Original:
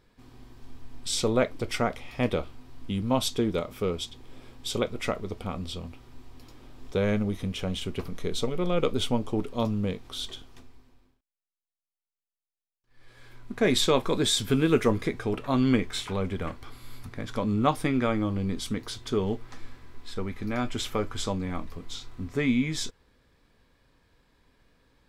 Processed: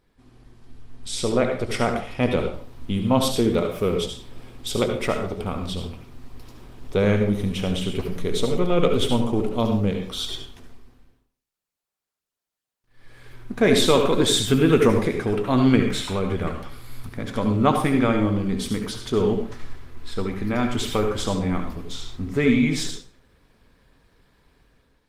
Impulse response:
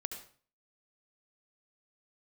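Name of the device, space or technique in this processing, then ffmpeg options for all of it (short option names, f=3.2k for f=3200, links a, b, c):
speakerphone in a meeting room: -filter_complex "[1:a]atrim=start_sample=2205[a];[0:a][a]afir=irnorm=-1:irlink=0,dynaudnorm=f=910:g=3:m=7.5dB" -ar 48000 -c:a libopus -b:a 24k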